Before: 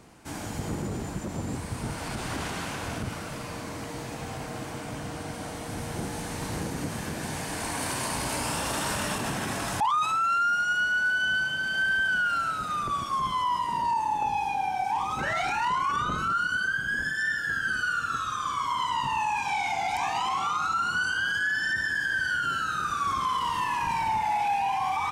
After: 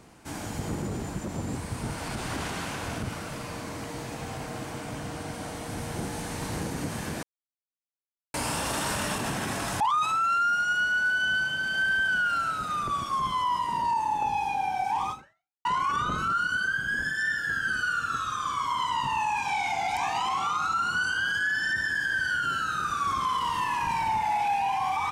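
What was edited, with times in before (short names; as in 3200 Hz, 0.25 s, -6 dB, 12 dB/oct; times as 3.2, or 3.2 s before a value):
7.23–8.34 mute
15.1–15.65 fade out exponential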